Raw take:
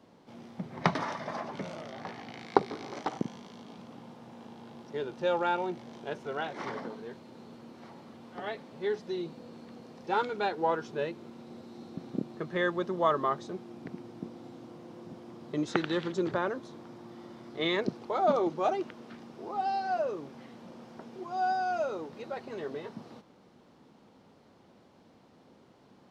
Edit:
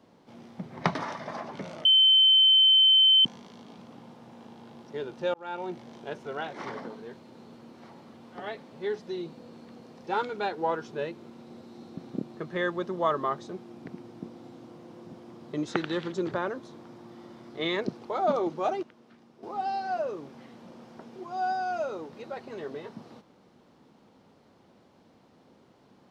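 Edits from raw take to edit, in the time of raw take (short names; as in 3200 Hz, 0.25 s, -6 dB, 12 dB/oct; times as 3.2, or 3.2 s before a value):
1.85–3.25 bleep 3080 Hz -15.5 dBFS
5.34–5.73 fade in
18.83–19.43 gain -9.5 dB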